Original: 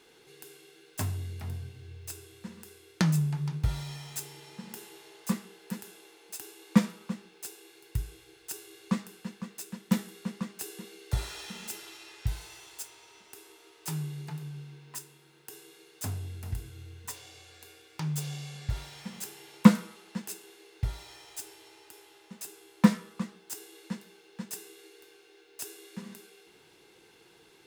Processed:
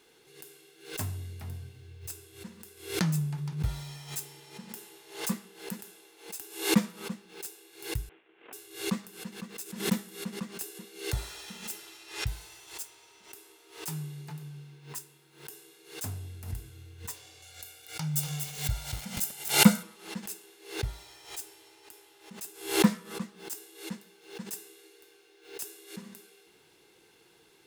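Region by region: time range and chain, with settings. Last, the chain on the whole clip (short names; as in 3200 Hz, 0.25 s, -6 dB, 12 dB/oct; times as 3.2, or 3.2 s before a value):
8.09–8.53 CVSD 16 kbps + expander -52 dBFS + HPF 210 Hz 24 dB/oct
17.42–19.83 high shelf 5100 Hz +7.5 dB + comb 1.4 ms, depth 60% + lo-fi delay 0.239 s, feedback 35%, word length 6-bit, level -5 dB
whole clip: high shelf 9100 Hz +6 dB; backwards sustainer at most 120 dB/s; gain -3 dB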